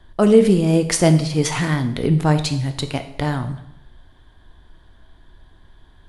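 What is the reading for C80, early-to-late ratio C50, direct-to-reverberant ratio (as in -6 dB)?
14.0 dB, 11.5 dB, 7.5 dB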